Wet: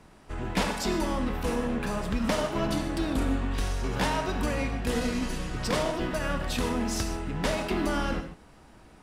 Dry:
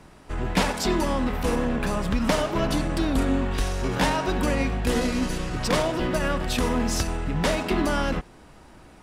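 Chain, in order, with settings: non-linear reverb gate 0.17 s flat, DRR 7 dB; gain -5 dB

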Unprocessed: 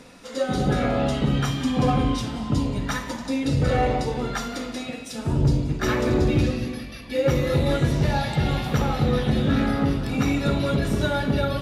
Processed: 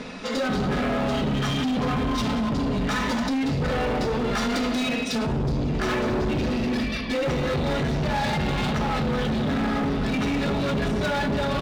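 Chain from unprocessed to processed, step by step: LPF 4600 Hz 12 dB/oct; low shelf 79 Hz -4 dB; comb 4.7 ms, depth 43%; in parallel at +1 dB: negative-ratio compressor -31 dBFS, ratio -1; on the sum: hard clip -22 dBFS, distortion -8 dB

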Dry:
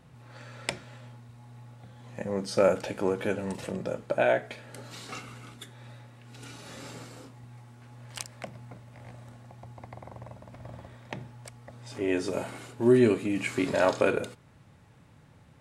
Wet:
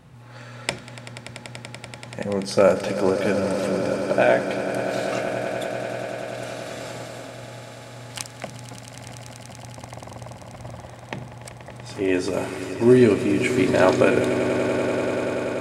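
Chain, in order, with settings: swelling echo 96 ms, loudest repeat 8, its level -14 dB; gain +6 dB

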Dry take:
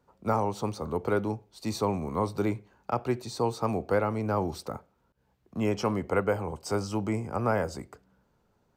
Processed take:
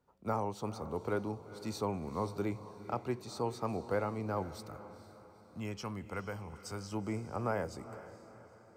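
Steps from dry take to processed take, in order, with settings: 4.42–6.92 bell 490 Hz -9.5 dB 2.3 oct; diffused feedback echo 0.461 s, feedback 46%, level -14 dB; gain -7.5 dB

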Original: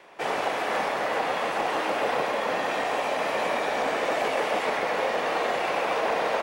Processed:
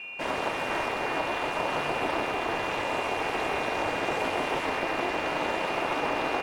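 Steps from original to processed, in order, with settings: whine 2600 Hz -34 dBFS; ring modulator 170 Hz

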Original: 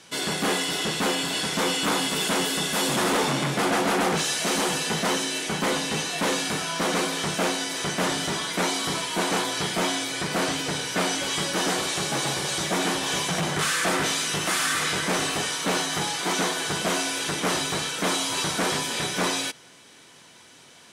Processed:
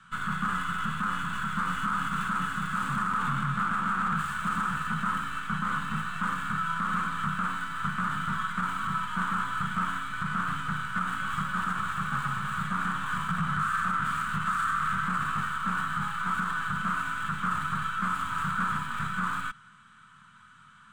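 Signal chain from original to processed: tracing distortion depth 0.32 ms; EQ curve 210 Hz 0 dB, 320 Hz -26 dB, 720 Hz -23 dB, 1300 Hz +11 dB, 2000 Hz -11 dB, 3300 Hz -11 dB, 5400 Hz -25 dB, 8100 Hz -12 dB, 12000 Hz -29 dB; limiter -19.5 dBFS, peak gain reduction 8 dB

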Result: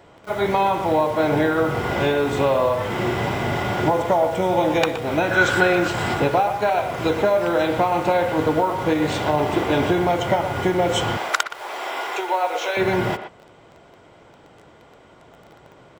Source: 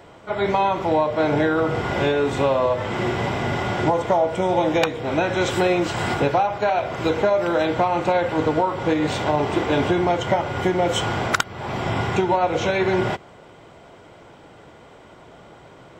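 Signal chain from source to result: 5.31–5.88 bell 1500 Hz +14 dB 0.32 oct; 11.17–12.77 Bessel high-pass 620 Hz, order 8; in parallel at -5.5 dB: bit-crush 6-bit; on the sum: speakerphone echo 0.12 s, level -9 dB; gain -3.5 dB

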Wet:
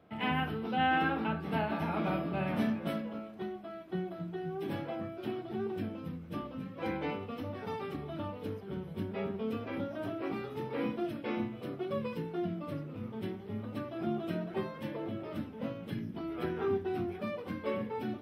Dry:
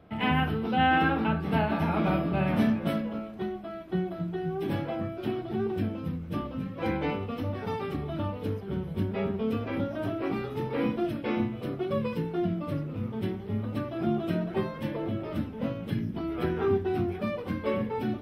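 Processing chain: HPF 160 Hz 6 dB/oct; gain -5 dB

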